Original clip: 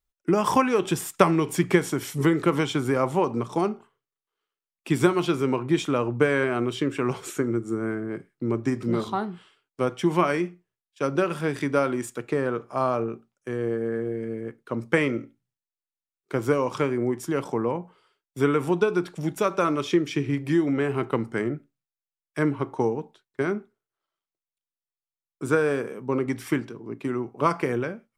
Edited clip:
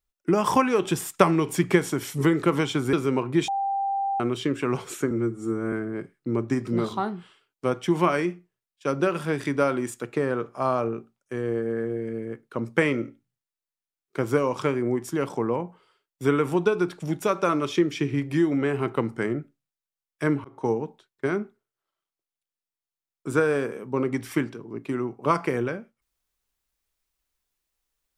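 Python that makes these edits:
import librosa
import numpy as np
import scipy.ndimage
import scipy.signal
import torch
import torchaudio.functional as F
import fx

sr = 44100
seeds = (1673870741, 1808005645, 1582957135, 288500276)

y = fx.edit(x, sr, fx.cut(start_s=2.93, length_s=2.36),
    fx.bleep(start_s=5.84, length_s=0.72, hz=789.0, db=-23.0),
    fx.stretch_span(start_s=7.47, length_s=0.41, factor=1.5),
    fx.fade_in_span(start_s=22.6, length_s=0.26), tone=tone)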